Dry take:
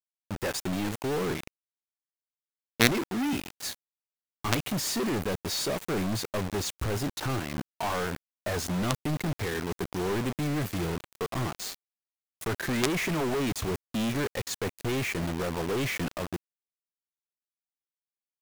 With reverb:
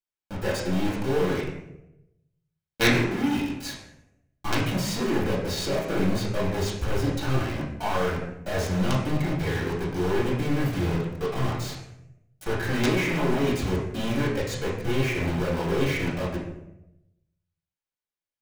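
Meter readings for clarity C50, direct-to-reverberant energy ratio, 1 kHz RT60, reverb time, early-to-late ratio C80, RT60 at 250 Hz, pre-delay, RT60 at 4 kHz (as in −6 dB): 3.0 dB, −8.0 dB, 0.75 s, 0.85 s, 6.0 dB, 1.0 s, 3 ms, 0.55 s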